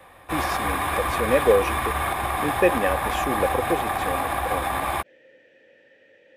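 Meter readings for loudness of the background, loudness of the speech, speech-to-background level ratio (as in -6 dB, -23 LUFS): -25.5 LUFS, -26.5 LUFS, -1.0 dB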